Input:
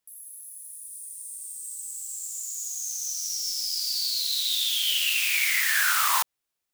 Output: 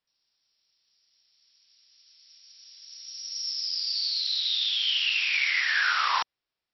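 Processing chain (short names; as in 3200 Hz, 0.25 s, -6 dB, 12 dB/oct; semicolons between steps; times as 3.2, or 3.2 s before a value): brick-wall FIR low-pass 5700 Hz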